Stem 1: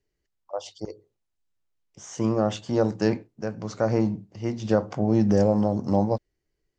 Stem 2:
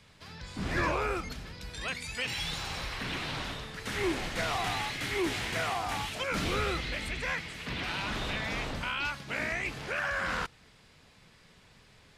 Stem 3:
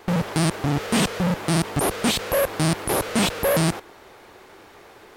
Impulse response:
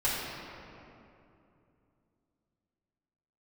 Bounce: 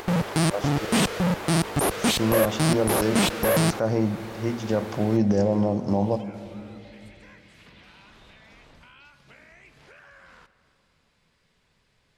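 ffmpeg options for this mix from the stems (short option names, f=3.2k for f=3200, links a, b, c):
-filter_complex "[0:a]alimiter=limit=-13.5dB:level=0:latency=1,volume=0.5dB,asplit=2[a][b];[b]volume=-20.5dB[c];[1:a]acompressor=threshold=-40dB:ratio=6,volume=-10dB,asplit=2[d][e];[e]volume=-19.5dB[f];[2:a]acompressor=mode=upward:threshold=-30dB:ratio=2.5,volume=-1dB[g];[3:a]atrim=start_sample=2205[h];[c][f]amix=inputs=2:normalize=0[i];[i][h]afir=irnorm=-1:irlink=0[j];[a][d][g][j]amix=inputs=4:normalize=0"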